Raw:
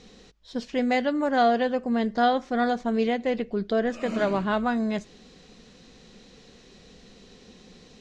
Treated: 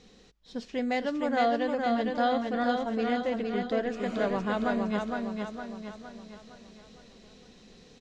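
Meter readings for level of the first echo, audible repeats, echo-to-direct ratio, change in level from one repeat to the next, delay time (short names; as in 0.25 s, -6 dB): -3.5 dB, 5, -2.5 dB, -6.5 dB, 0.461 s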